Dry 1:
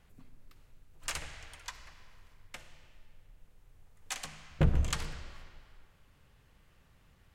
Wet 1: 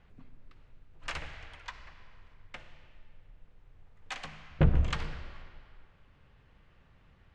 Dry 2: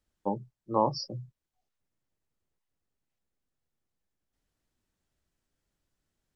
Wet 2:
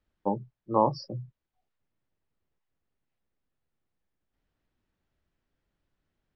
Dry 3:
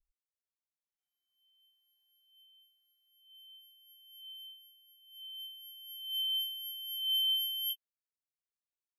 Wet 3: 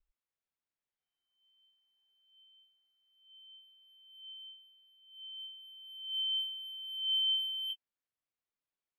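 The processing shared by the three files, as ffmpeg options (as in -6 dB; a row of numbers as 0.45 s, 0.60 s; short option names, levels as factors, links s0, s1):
-af "lowpass=3200,volume=1.33"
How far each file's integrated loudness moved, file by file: +2.0 LU, +2.0 LU, -0.5 LU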